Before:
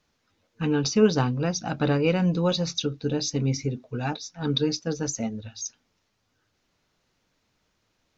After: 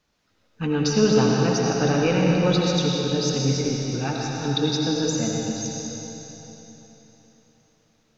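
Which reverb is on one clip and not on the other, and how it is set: algorithmic reverb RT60 3.8 s, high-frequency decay 0.95×, pre-delay 45 ms, DRR -2.5 dB

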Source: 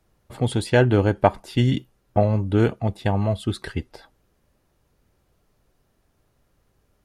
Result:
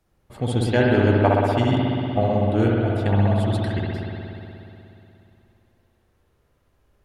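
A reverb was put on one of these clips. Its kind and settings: spring tank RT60 3 s, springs 60 ms, chirp 45 ms, DRR -3.5 dB; trim -3.5 dB

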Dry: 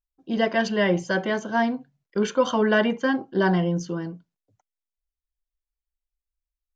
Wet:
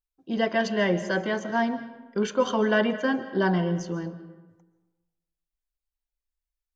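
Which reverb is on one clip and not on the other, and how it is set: algorithmic reverb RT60 1.2 s, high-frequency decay 0.55×, pre-delay 100 ms, DRR 12.5 dB; trim -2.5 dB

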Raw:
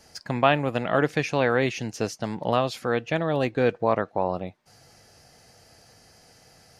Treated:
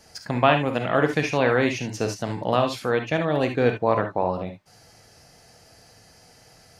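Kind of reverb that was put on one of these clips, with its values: gated-style reverb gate 90 ms rising, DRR 5.5 dB; trim +1 dB

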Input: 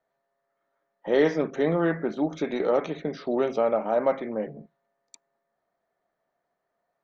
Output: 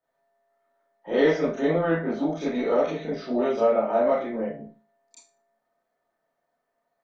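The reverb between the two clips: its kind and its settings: Schroeder reverb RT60 0.32 s, combs from 25 ms, DRR -9 dB; trim -8 dB

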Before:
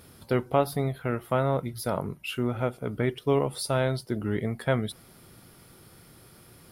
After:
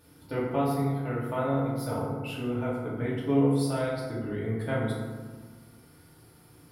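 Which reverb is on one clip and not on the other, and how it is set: FDN reverb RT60 1.5 s, low-frequency decay 1.3×, high-frequency decay 0.45×, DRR -7 dB; trim -11 dB

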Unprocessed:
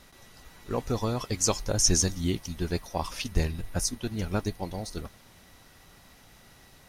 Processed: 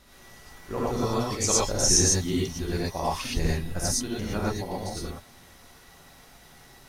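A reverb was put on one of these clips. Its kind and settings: gated-style reverb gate 140 ms rising, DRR -6 dB; trim -3.5 dB

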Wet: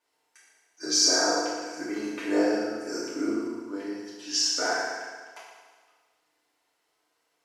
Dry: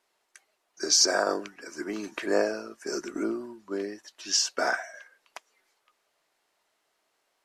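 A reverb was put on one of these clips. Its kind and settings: FDN reverb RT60 1.5 s, low-frequency decay 0.95×, high-frequency decay 0.9×, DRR -9.5 dB; trim -9.5 dB

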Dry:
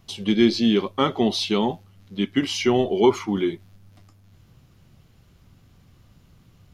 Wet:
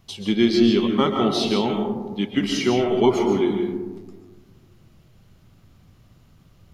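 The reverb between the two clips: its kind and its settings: algorithmic reverb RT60 1.4 s, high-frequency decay 0.25×, pre-delay 95 ms, DRR 3 dB; trim -1 dB

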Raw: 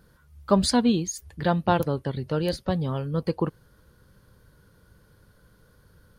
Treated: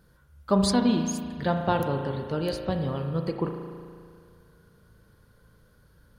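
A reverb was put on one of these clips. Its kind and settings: spring tank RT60 2.1 s, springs 36 ms, chirp 55 ms, DRR 4 dB; trim -3 dB

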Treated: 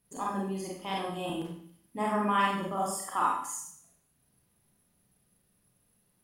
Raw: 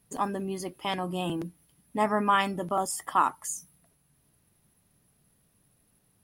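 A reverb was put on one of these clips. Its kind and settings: Schroeder reverb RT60 0.62 s, combs from 31 ms, DRR -3.5 dB; trim -8 dB

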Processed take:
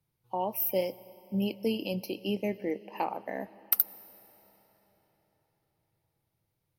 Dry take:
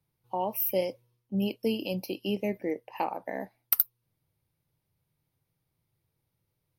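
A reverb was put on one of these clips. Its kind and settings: algorithmic reverb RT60 4.6 s, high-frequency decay 0.9×, pre-delay 65 ms, DRR 19 dB; trim -1 dB

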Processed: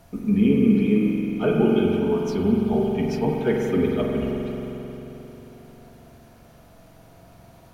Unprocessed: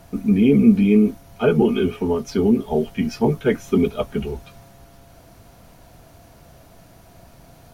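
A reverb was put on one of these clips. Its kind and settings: spring tank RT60 3.7 s, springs 44 ms, chirp 45 ms, DRR -1 dB; trim -5.5 dB

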